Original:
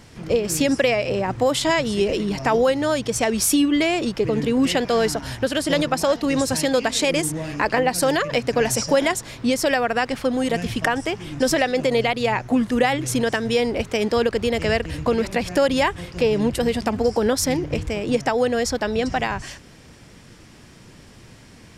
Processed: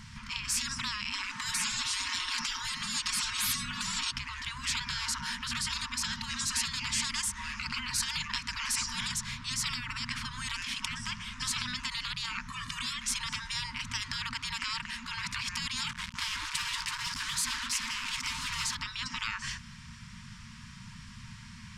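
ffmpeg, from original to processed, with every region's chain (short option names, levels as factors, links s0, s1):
-filter_complex "[0:a]asettb=1/sr,asplit=3[s0][s1][s2];[s0]atrim=end=1.124[s3];[s1]atrim=start=1.12:end=4.11,asetpts=PTS-STARTPTS,afade=t=in:d=0.004:c=qsin,afade=t=out:st=2.986:d=0.004:c=qsin,acontrast=49,aecho=1:1:5.4:0.7,atrim=end_sample=131859,afreqshift=-32[s4];[s2]atrim=start=4.106[s5];[s3][s4]acrossfade=d=0.004:c1=hsin:c2=qsin[s6];[s6][s5]acrossfade=d=0.004:c1=qsin:c2=hsin,asettb=1/sr,asplit=3[s7][s8][s9];[s7]atrim=end=12.484[s10];[s8]atrim=start=12.48:end=12.98,asetpts=PTS-STARTPTS,afade=t=in:d=0.004:c=qsin,afade=t=out:st=0.496:d=0.004:c=qsin,highpass=f=76:p=1,aecho=1:1:1.7:0.87,atrim=end_sample=22050[s11];[s9]atrim=start=12.976[s12];[s10][s11]acrossfade=d=0.004:c1=hsin:c2=qsin[s13];[s13][s12]acrossfade=d=0.004:c1=qsin:c2=hsin,asettb=1/sr,asplit=3[s14][s15][s16];[s14]atrim=end=15.894[s17];[s15]atrim=start=15.89:end=18.75,asetpts=PTS-STARTPTS,afade=t=in:d=0.004:c=qsin,afade=t=out:st=2.856:d=0.004:c=qsin,aecho=1:1:331:0.531,atrim=end_sample=126126,acrusher=bits=4:mix=0:aa=0.5[s18];[s16]atrim=start=18.746[s19];[s17][s18]acrossfade=d=0.004:c1=hsin:c2=qsin[s20];[s20][s19]acrossfade=d=0.004:c1=qsin:c2=hsin,afftfilt=real='re*(1-between(b*sr/4096,240,900))':imag='im*(1-between(b*sr/4096,240,900))':win_size=4096:overlap=0.75,lowpass=7800,afftfilt=real='re*lt(hypot(re,im),0.1)':imag='im*lt(hypot(re,im),0.1)':win_size=1024:overlap=0.75"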